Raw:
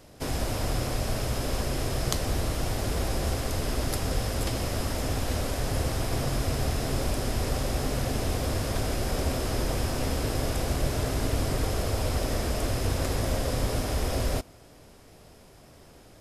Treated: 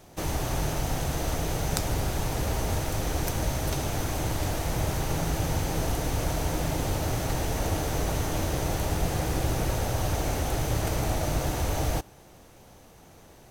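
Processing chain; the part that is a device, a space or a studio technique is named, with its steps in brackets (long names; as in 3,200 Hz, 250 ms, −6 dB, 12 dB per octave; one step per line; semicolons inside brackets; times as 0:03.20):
nightcore (speed change +20%)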